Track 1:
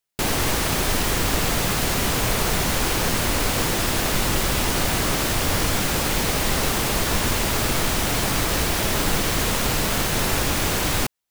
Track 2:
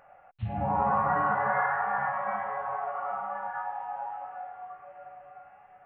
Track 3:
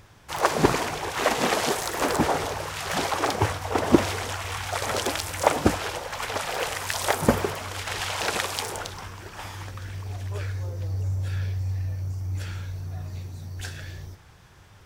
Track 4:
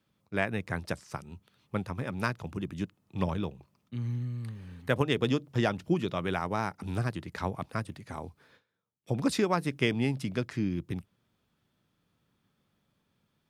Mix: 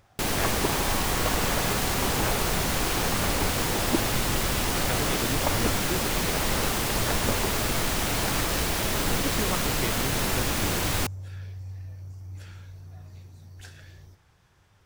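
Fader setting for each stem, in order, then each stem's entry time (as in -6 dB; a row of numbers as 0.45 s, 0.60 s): -4.5 dB, -10.5 dB, -10.0 dB, -6.0 dB; 0.00 s, 0.00 s, 0.00 s, 0.00 s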